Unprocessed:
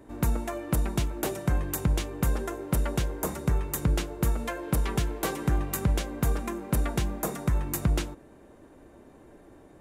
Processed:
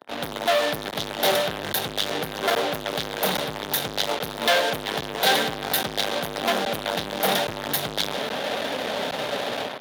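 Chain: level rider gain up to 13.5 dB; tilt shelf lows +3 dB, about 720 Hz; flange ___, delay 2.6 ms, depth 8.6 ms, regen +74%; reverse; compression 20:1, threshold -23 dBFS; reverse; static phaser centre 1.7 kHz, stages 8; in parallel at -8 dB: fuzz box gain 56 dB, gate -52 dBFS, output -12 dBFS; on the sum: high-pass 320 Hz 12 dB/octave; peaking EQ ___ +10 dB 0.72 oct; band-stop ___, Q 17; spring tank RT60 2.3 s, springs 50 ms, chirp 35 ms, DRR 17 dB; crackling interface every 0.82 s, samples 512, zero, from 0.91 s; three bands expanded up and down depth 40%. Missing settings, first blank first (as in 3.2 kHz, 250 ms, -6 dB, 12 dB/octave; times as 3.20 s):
0.35 Hz, 3.5 kHz, 7.7 kHz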